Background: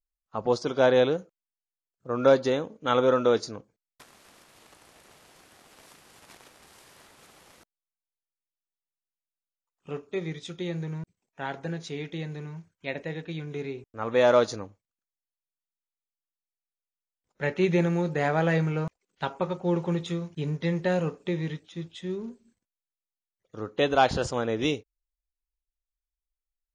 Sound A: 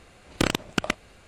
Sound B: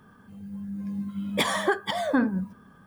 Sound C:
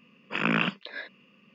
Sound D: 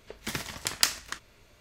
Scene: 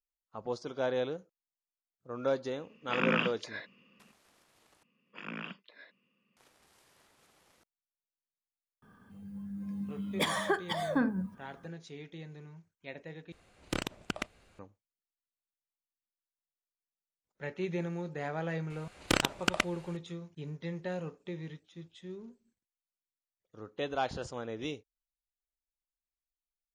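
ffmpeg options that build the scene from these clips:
-filter_complex "[3:a]asplit=2[a][b];[1:a]asplit=2[c][d];[0:a]volume=-11.5dB[e];[d]lowshelf=f=440:g=-6[f];[e]asplit=3[g][h][i];[g]atrim=end=4.834[j];[b]atrim=end=1.54,asetpts=PTS-STARTPTS,volume=-16.5dB[k];[h]atrim=start=6.366:end=13.324[l];[c]atrim=end=1.27,asetpts=PTS-STARTPTS,volume=-11dB[m];[i]atrim=start=14.586[n];[a]atrim=end=1.54,asetpts=PTS-STARTPTS,volume=-4.5dB,afade=t=in:d=0.004:c=hsin,afade=t=out:st=1.536:d=0.004:c=hsin,adelay=2580[o];[2:a]atrim=end=2.86,asetpts=PTS-STARTPTS,volume=-6dB,afade=t=in:d=0.004:c=hsin,afade=t=out:st=2.856:d=0.004:c=hsin,adelay=388962S[p];[f]atrim=end=1.27,asetpts=PTS-STARTPTS,volume=-2dB,afade=t=in:d=0.004:c=hsin,afade=t=out:st=1.266:d=0.004:c=hsin,adelay=18700[q];[j][k]acrossfade=d=0.004:c1=hsin:c2=hsin[r];[r][l]acrossfade=d=0.004:c1=hsin:c2=hsin[s];[s][m]acrossfade=d=0.004:c1=hsin:c2=hsin[t];[t][n]acrossfade=d=0.004:c1=hsin:c2=hsin[u];[u][o][p][q]amix=inputs=4:normalize=0"

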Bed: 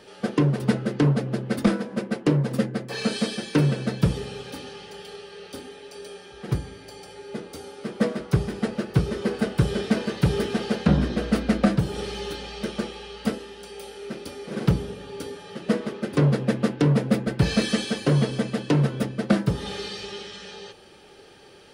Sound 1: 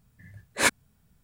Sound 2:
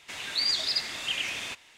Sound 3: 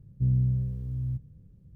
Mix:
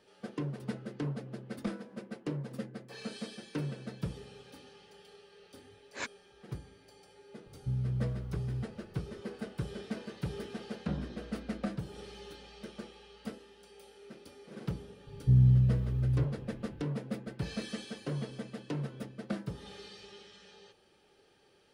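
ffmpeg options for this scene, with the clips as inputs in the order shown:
-filter_complex "[3:a]asplit=2[a][b];[0:a]volume=-16dB[c];[1:a]aresample=16000,aresample=44100[d];[a]alimiter=limit=-21.5dB:level=0:latency=1:release=71[e];[b]acontrast=33[f];[d]atrim=end=1.23,asetpts=PTS-STARTPTS,volume=-16.5dB,afade=t=in:d=0.004:c=hsin,afade=t=out:st=1.226:d=0.004:c=hsin,adelay=236817S[g];[e]atrim=end=1.75,asetpts=PTS-STARTPTS,volume=-5dB,afade=t=in:d=0.004:c=hsin,afade=t=out:st=1.746:d=0.004:c=hsin,adelay=328986S[h];[f]atrim=end=1.75,asetpts=PTS-STARTPTS,volume=-3dB,afade=t=in:d=0.004:c=hsin,afade=t=out:st=1.746:d=0.004:c=hsin,adelay=15070[i];[c][g][h][i]amix=inputs=4:normalize=0"

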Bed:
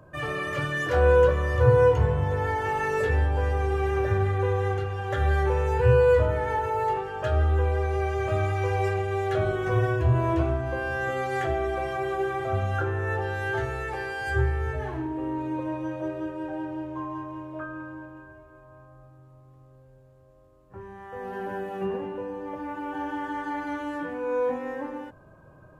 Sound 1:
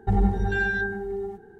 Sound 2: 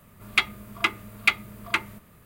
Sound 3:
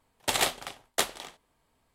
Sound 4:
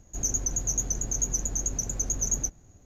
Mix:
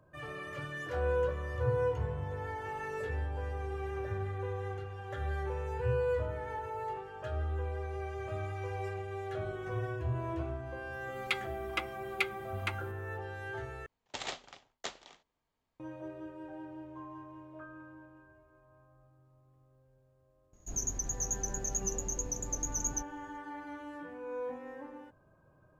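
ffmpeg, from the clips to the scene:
-filter_complex "[0:a]volume=-12.5dB[a];[3:a]aresample=16000,aresample=44100[b];[a]asplit=2[c][d];[c]atrim=end=13.864[e];[b]atrim=end=1.94,asetpts=PTS-STARTPTS,volume=-13dB[f];[d]atrim=start=15.796[g];[2:a]atrim=end=2.25,asetpts=PTS-STARTPTS,volume=-12dB,afade=t=in:d=0.004:c=hsin,afade=t=out:st=2.246:d=0.004:c=hsin,adelay=10930[h];[4:a]atrim=end=2.85,asetpts=PTS-STARTPTS,volume=-7dB,afade=t=in:d=0.004:c=hsin,afade=t=out:st=2.846:d=0.004:c=hsin,adelay=20530[i];[e][f]acrossfade=d=0.004:c1=hsin:c2=hsin[j];[j][g]acrossfade=d=0.004:c1=hsin:c2=hsin[k];[k][h][i]amix=inputs=3:normalize=0"

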